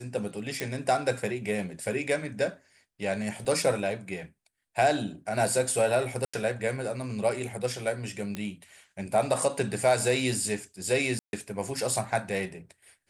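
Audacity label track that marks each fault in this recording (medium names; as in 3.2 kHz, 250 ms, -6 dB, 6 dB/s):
0.600000	0.600000	pop -16 dBFS
3.450000	3.450000	dropout 4.2 ms
6.250000	6.330000	dropout 85 ms
8.350000	8.350000	pop -19 dBFS
11.190000	11.330000	dropout 141 ms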